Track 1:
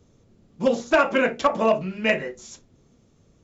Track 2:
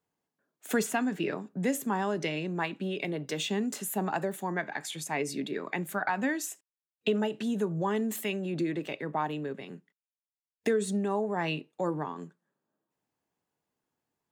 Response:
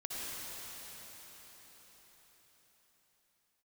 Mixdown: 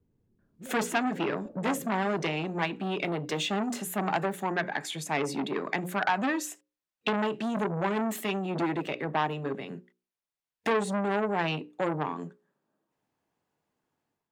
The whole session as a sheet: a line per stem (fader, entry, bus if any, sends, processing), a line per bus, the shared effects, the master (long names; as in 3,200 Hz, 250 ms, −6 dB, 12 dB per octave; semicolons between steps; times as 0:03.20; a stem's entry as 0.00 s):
−13.5 dB, 0.00 s, no send, inverse Chebyshev low-pass filter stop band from 2,600 Hz, stop band 80 dB; brickwall limiter −24.5 dBFS, peak gain reduction 10 dB
−4.5 dB, 0.00 s, no send, mains-hum notches 60/120/180/240/300/360/420/480/540 Hz; automatic gain control gain up to 10 dB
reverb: not used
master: high-shelf EQ 4,900 Hz −8.5 dB; saturating transformer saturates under 1,500 Hz